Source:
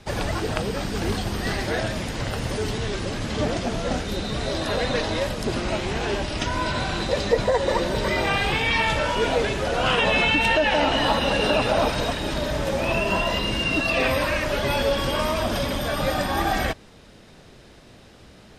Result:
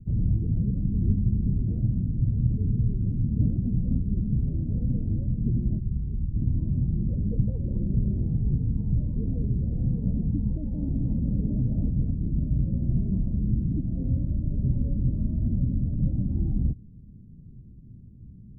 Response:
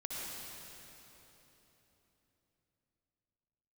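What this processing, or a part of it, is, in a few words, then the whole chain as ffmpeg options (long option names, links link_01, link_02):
the neighbour's flat through the wall: -filter_complex "[0:a]lowpass=frequency=210:width=0.5412,lowpass=frequency=210:width=1.3066,equalizer=frequency=120:width_type=o:width=0.42:gain=3.5,asplit=3[link_01][link_02][link_03];[link_01]afade=type=out:start_time=5.78:duration=0.02[link_04];[link_02]equalizer=frequency=540:width_type=o:width=2.9:gain=-13,afade=type=in:start_time=5.78:duration=0.02,afade=type=out:start_time=6.34:duration=0.02[link_05];[link_03]afade=type=in:start_time=6.34:duration=0.02[link_06];[link_04][link_05][link_06]amix=inputs=3:normalize=0,volume=5dB"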